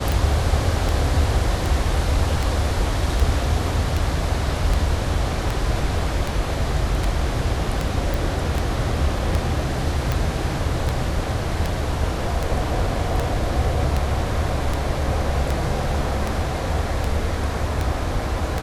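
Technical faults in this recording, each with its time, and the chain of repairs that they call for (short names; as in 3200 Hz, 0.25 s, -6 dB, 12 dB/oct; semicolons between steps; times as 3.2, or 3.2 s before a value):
tick 78 rpm
8.14 pop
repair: de-click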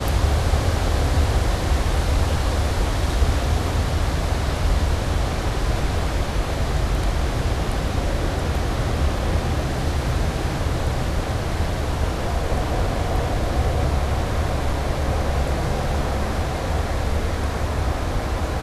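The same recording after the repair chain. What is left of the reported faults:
none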